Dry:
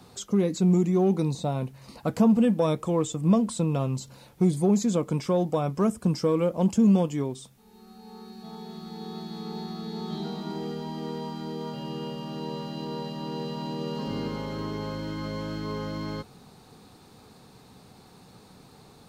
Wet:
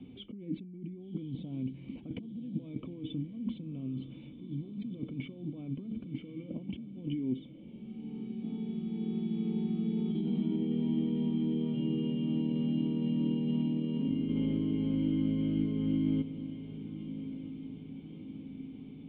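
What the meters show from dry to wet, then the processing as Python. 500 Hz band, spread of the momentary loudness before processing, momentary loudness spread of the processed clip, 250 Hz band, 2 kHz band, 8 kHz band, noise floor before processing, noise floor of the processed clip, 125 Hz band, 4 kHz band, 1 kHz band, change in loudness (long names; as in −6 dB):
−15.5 dB, 16 LU, 13 LU, −5.0 dB, below −10 dB, below −40 dB, −53 dBFS, −49 dBFS, −7.5 dB, −10.0 dB, below −20 dB, −7.5 dB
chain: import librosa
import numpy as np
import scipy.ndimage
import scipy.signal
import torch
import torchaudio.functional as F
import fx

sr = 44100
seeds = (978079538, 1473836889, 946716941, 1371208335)

y = fx.over_compress(x, sr, threshold_db=-34.0, ratio=-1.0)
y = fx.formant_cascade(y, sr, vowel='i')
y = fx.echo_diffused(y, sr, ms=1127, feedback_pct=55, wet_db=-12.5)
y = y * 10.0 ** (6.0 / 20.0)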